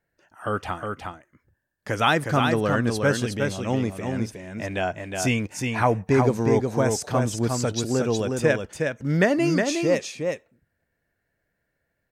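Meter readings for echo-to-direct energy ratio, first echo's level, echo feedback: -4.5 dB, -4.5 dB, no steady repeat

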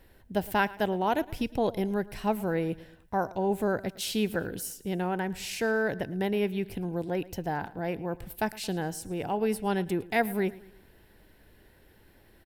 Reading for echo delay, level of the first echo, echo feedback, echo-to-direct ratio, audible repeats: 0.111 s, -20.0 dB, 46%, -19.0 dB, 3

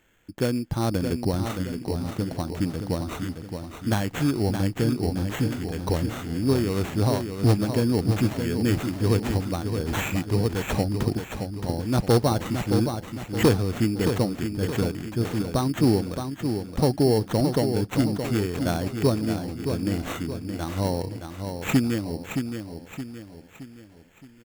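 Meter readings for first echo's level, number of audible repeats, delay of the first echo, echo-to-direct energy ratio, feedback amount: -7.0 dB, 4, 0.62 s, -6.0 dB, 44%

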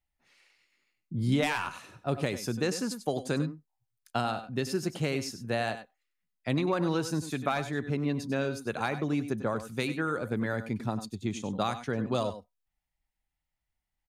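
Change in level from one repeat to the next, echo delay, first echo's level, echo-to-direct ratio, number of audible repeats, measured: no steady repeat, 96 ms, -11.5 dB, -11.5 dB, 1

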